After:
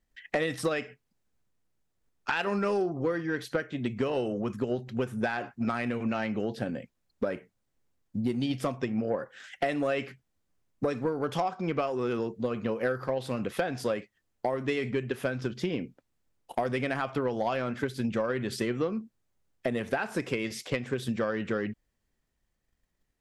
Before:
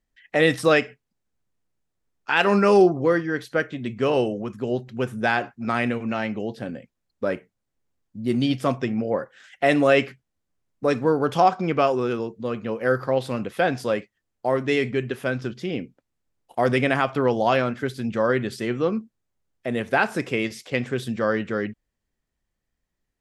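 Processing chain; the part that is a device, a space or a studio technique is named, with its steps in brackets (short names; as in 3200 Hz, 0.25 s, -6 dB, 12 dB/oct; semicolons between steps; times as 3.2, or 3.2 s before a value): drum-bus smash (transient shaper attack +7 dB, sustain +2 dB; compressor 6:1, threshold -25 dBFS, peak gain reduction 16 dB; soft clip -17.5 dBFS, distortion -19 dB)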